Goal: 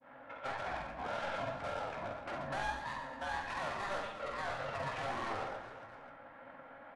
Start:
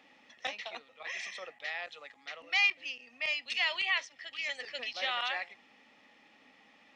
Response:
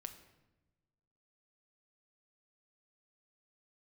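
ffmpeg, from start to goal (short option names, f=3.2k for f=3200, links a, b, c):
-filter_complex "[0:a]acompressor=threshold=-43dB:ratio=2.5,aeval=exprs='val(0)*sin(2*PI*770*n/s)':c=same,agate=range=-33dB:threshold=-58dB:ratio=3:detection=peak,highshelf=f=5.2k:g=-9,asplit=2[a][b];[b]highpass=f=720:p=1,volume=24dB,asoftclip=type=tanh:threshold=-30dB[c];[a][c]amix=inputs=2:normalize=0,lowpass=f=6.9k:p=1,volume=-6dB,aecho=1:1:50|125|237.5|406.2|659.4:0.631|0.398|0.251|0.158|0.1,asetrate=22696,aresample=44100,atempo=1.94306,adynamicequalizer=threshold=0.00355:dfrequency=1700:dqfactor=0.8:tfrequency=1700:tqfactor=0.8:attack=5:release=100:ratio=0.375:range=2:mode=cutabove:tftype=bell[d];[1:a]atrim=start_sample=2205,asetrate=37926,aresample=44100[e];[d][e]afir=irnorm=-1:irlink=0,flanger=delay=8.7:depth=9.8:regen=54:speed=1.7:shape=sinusoidal,volume=8dB"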